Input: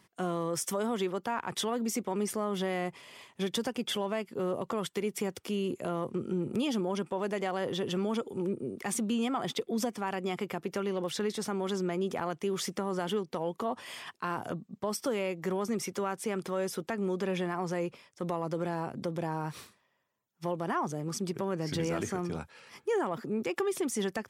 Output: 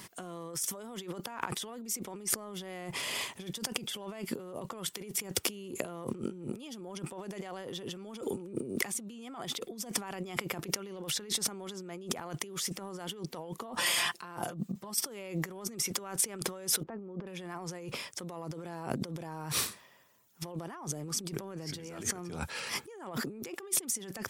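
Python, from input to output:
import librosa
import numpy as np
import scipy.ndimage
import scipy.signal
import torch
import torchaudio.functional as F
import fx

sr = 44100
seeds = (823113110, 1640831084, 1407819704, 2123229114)

y = fx.comb(x, sr, ms=5.8, depth=0.65, at=(13.77, 14.94))
y = fx.lowpass(y, sr, hz=1100.0, slope=12, at=(16.83, 17.27))
y = fx.over_compress(y, sr, threshold_db=-44.0, ratio=-1.0)
y = fx.high_shelf(y, sr, hz=4500.0, db=9.5)
y = y * librosa.db_to_amplitude(3.0)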